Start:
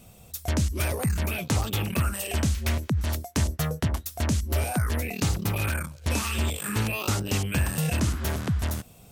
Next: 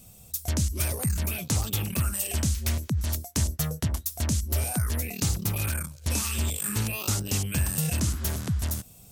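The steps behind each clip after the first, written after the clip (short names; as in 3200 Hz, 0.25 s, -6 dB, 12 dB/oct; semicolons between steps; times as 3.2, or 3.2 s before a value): tone controls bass +5 dB, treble +11 dB; gain -6 dB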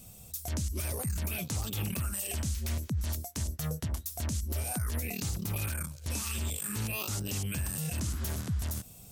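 compressor, threshold -27 dBFS, peak gain reduction 7 dB; limiter -24 dBFS, peak gain reduction 9 dB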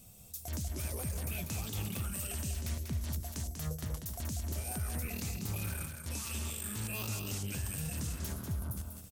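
spectral gain 8.33–8.77, 1600–9000 Hz -13 dB; loudspeakers at several distances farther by 66 m -6 dB, 91 m -11 dB; gain -5 dB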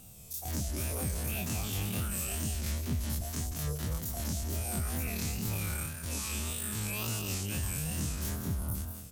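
spectral dilation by 60 ms; wow and flutter 85 cents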